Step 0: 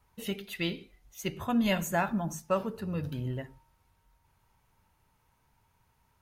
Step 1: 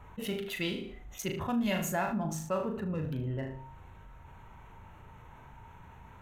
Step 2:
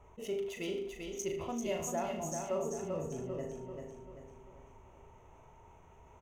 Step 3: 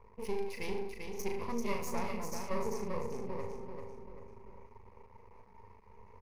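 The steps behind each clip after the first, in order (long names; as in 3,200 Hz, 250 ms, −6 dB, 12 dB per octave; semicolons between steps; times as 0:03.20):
adaptive Wiener filter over 9 samples; on a send: flutter between parallel walls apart 6.5 metres, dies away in 0.33 s; on the sum: envelope flattener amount 50%; level −6.5 dB
thirty-one-band graphic EQ 125 Hz −6 dB, 200 Hz −6 dB, 400 Hz +10 dB, 630 Hz +8 dB, 1,600 Hz −11 dB, 4,000 Hz −8 dB, 6,300 Hz +11 dB, 12,500 Hz −7 dB; on a send: repeating echo 391 ms, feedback 45%, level −5 dB; on the sum: level −7.5 dB
half-wave rectification; EQ curve with evenly spaced ripples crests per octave 0.88, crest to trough 13 dB; one half of a high-frequency compander decoder only; level +2 dB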